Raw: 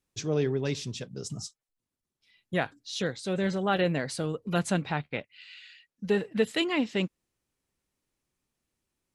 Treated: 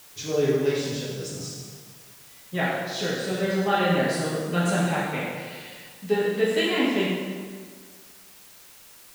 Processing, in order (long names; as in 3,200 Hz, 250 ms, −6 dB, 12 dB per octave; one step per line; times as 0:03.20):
low-shelf EQ 100 Hz −10.5 dB
dense smooth reverb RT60 1.8 s, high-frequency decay 0.75×, DRR −7.5 dB
in parallel at −8 dB: bit-depth reduction 6 bits, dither triangular
on the sum: level −5.5 dB